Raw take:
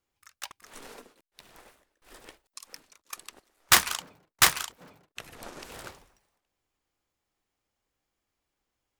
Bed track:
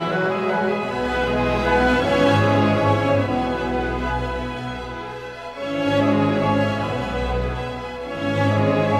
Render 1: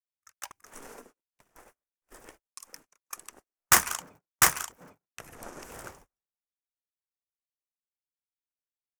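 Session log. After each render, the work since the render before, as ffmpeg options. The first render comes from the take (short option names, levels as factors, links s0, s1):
-af "firequalizer=gain_entry='entry(1500,0);entry(4000,-12);entry(5900,1)':delay=0.05:min_phase=1,agate=range=0.0282:threshold=0.002:ratio=16:detection=peak"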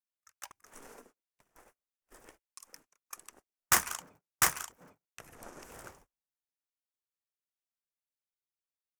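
-af "volume=0.531"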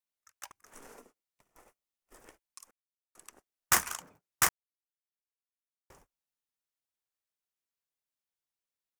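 -filter_complex "[0:a]asettb=1/sr,asplit=3[s0][s1][s2];[s0]atrim=end=0.984[s3];[s1]atrim=start=0.98:end=2.17,asetpts=PTS-STARTPTS,afade=t=in:d=0.004:c=qsin,afade=t=out:st=1.186:d=0.004:c=qsin,bandreject=f=1600:w=8.3[s4];[s2]atrim=start=2.166[s5];[s3][s4]acrossfade=d=0.004:c1=hsin:c2=qsin[s6];[s6][s5]acrossfade=d=0.004:c1=qsin:c2=hsin,asplit=5[s7][s8][s9][s10][s11];[s7]atrim=end=2.71,asetpts=PTS-STARTPTS,afade=t=out:st=2.706:d=0.004:c=hsin[s12];[s8]atrim=start=2.71:end=3.15,asetpts=PTS-STARTPTS,volume=0[s13];[s9]atrim=start=3.15:end=4.49,asetpts=PTS-STARTPTS,afade=t=in:d=0.004:c=hsin,afade=t=out:st=1.336:d=0.004:c=hsin[s14];[s10]atrim=start=4.49:end=5.9,asetpts=PTS-STARTPTS,volume=0[s15];[s11]atrim=start=5.9,asetpts=PTS-STARTPTS,afade=t=in:d=0.004:c=hsin[s16];[s12][s13][s14][s15][s16]concat=n=5:v=0:a=1"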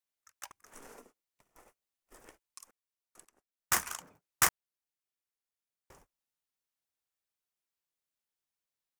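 -filter_complex "[0:a]asplit=2[s0][s1];[s0]atrim=end=3.25,asetpts=PTS-STARTPTS,afade=t=out:st=3.246:d=0.004:c=hsin:silence=0.11885[s2];[s1]atrim=start=3.25,asetpts=PTS-STARTPTS,afade=t=in:d=1.21:c=qsin:silence=0.11885[s3];[s2][s3]concat=n=2:v=0:a=1"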